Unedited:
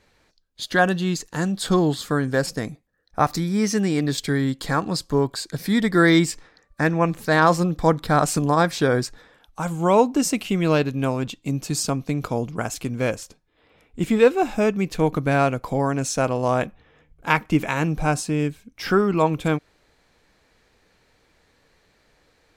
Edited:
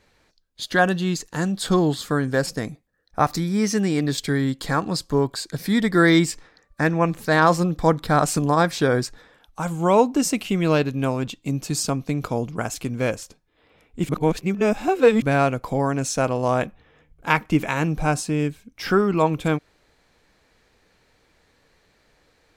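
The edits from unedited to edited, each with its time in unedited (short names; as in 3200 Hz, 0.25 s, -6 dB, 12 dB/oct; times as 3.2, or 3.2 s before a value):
14.09–15.22 reverse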